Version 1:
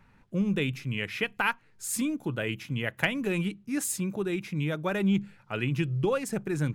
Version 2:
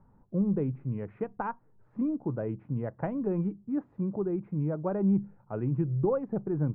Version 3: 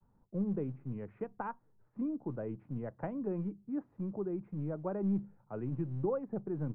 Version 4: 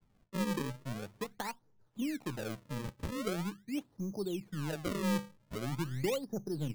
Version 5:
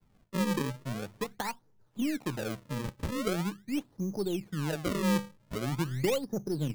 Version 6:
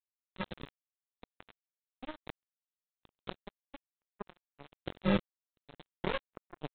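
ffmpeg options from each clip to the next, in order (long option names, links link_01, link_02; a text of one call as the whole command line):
ffmpeg -i in.wav -af "lowpass=frequency=1000:width=0.5412,lowpass=frequency=1000:width=1.3066" out.wav
ffmpeg -i in.wav -filter_complex "[0:a]agate=range=-33dB:threshold=-57dB:ratio=3:detection=peak,acrossover=split=150|680[link_01][link_02][link_03];[link_01]aeval=exprs='clip(val(0),-1,0.00282)':channel_layout=same[link_04];[link_04][link_02][link_03]amix=inputs=3:normalize=0,volume=-6dB" out.wav
ffmpeg -i in.wav -af "acrusher=samples=35:mix=1:aa=0.000001:lfo=1:lforange=56:lforate=0.43" out.wav
ffmpeg -i in.wav -af "aeval=exprs='if(lt(val(0),0),0.708*val(0),val(0))':channel_layout=same,volume=6dB" out.wav
ffmpeg -i in.wav -af "flanger=delay=19.5:depth=2.2:speed=0.94,aresample=8000,acrusher=bits=3:mix=0:aa=0.5,aresample=44100,volume=1dB" out.wav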